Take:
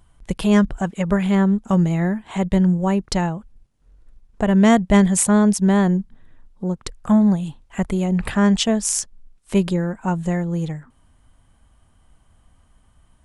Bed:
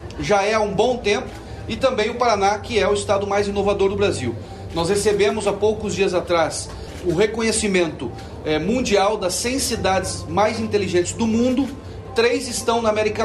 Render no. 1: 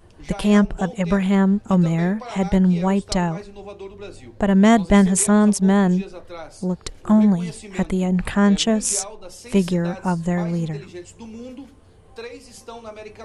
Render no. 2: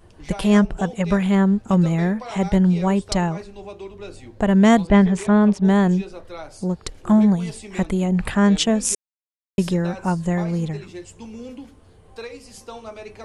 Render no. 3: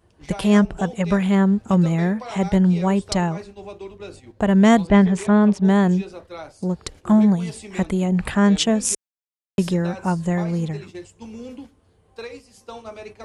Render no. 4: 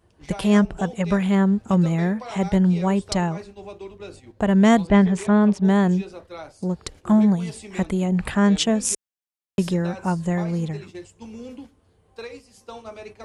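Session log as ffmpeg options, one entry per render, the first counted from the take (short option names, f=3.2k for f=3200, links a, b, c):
-filter_complex "[1:a]volume=-18dB[a];[0:a][a]amix=inputs=2:normalize=0"
-filter_complex "[0:a]asettb=1/sr,asplit=3[a][b][c];[a]atrim=end=4.874[d];[b]atrim=start=4.87:end=5.65,asetpts=PTS-STARTPTS,afade=t=in:d=0.004:c=qsin,afade=t=out:st=0.776:d=0.004:c=qsin,lowpass=3.1k[e];[c]atrim=start=5.646[f];[d][e]acrossfade=d=0.004:c1=hsin:c2=qsin[g];[g][f]acrossfade=d=0.004:c1=qsin:c2=hsin,asplit=3[h][i][j];[h]atrim=end=8.95,asetpts=PTS-STARTPTS,afade=t=out:st=8.946:d=0.004:c=hsin[k];[i]atrim=start=8.95:end=9.58,asetpts=PTS-STARTPTS,volume=0[l];[j]atrim=start=9.58,asetpts=PTS-STARTPTS,afade=t=in:d=0.004:c=hsin[m];[k][l][m]concat=n=3:v=0:a=1"
-af "agate=range=-8dB:threshold=-39dB:ratio=16:detection=peak,highpass=44"
-af "volume=-1.5dB"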